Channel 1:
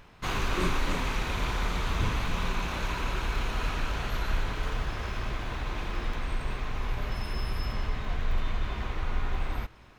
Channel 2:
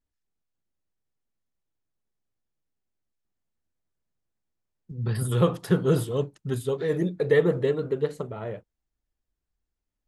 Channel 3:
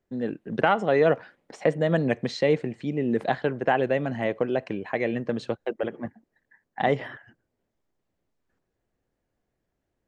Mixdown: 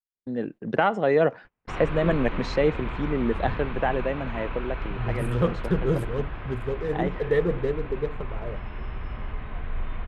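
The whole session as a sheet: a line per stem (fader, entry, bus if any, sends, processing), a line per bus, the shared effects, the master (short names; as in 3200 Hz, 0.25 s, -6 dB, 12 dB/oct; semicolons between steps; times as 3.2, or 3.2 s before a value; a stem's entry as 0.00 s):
-2.0 dB, 1.45 s, no send, LPF 3000 Hz 24 dB/oct
-2.5 dB, 0.00 s, no send, Wiener smoothing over 15 samples
0.0 dB, 0.15 s, no send, auto duck -6 dB, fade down 1.70 s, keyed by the second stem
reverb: off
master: high shelf 3700 Hz -6 dB; gate -41 dBFS, range -27 dB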